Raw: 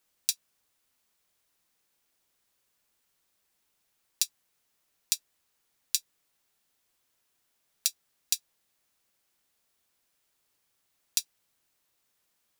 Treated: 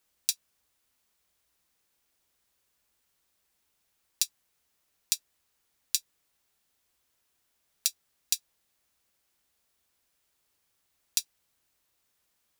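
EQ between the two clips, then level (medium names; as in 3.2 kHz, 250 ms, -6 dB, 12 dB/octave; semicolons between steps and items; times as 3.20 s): peaking EQ 61 Hz +9.5 dB 0.61 oct; 0.0 dB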